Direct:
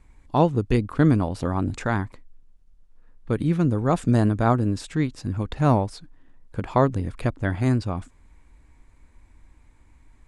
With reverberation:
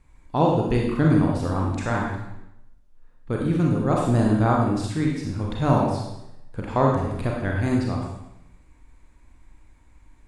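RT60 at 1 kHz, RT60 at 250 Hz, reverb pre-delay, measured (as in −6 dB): 0.85 s, 0.90 s, 31 ms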